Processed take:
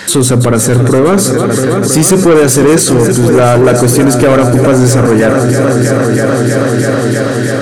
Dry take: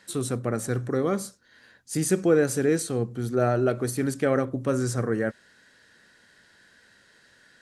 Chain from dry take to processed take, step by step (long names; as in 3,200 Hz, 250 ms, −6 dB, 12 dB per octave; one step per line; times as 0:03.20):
on a send: echo machine with several playback heads 323 ms, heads all three, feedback 62%, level −16 dB
on the sum: soft clipping −22 dBFS, distortion −10 dB
boost into a limiter +33 dB
level −1 dB